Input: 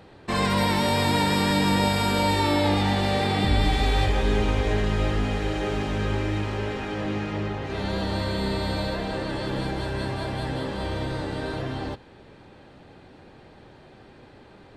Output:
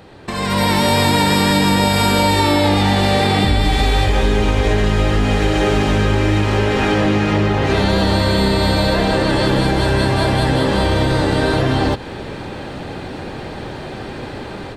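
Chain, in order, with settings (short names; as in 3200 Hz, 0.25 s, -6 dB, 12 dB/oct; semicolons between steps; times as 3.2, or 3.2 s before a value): compressor, threshold -33 dBFS, peak gain reduction 15.5 dB; high shelf 7000 Hz +4.5 dB; AGC gain up to 14 dB; gain +6.5 dB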